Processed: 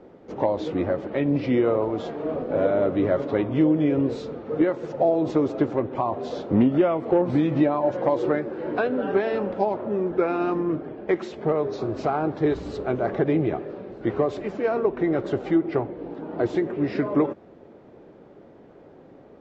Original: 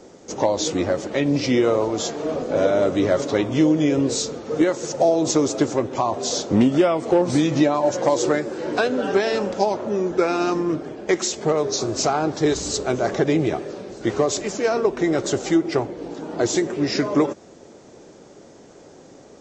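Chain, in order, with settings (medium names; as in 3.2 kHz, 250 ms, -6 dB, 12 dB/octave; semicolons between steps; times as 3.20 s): distance through air 490 m; trim -1.5 dB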